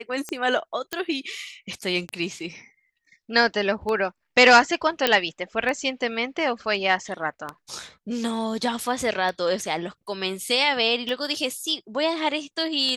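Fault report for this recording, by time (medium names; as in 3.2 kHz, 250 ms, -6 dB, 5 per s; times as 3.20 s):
tick 33 1/3 rpm -16 dBFS
0.93 s: pop -11 dBFS
5.07 s: pop -4 dBFS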